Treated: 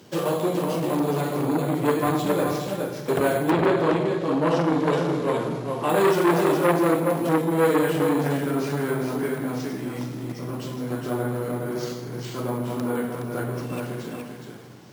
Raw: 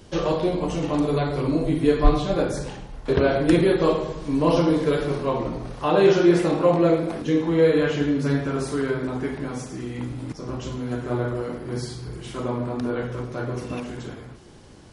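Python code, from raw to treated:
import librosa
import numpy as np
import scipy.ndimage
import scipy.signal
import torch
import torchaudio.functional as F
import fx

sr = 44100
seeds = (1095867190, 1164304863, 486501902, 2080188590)

y = scipy.signal.sosfilt(scipy.signal.butter(4, 120.0, 'highpass', fs=sr, output='sos'), x)
y = y + 10.0 ** (-5.0 / 20.0) * np.pad(y, (int(417 * sr / 1000.0), 0))[:len(y)]
y = np.repeat(y[::4], 4)[:len(y)]
y = fx.lowpass(y, sr, hz=fx.line((3.5, 3900.0), (5.88, 8000.0)), slope=12, at=(3.5, 5.88), fade=0.02)
y = fx.echo_feedback(y, sr, ms=156, feedback_pct=41, wet_db=-16.0)
y = fx.transformer_sat(y, sr, knee_hz=1100.0)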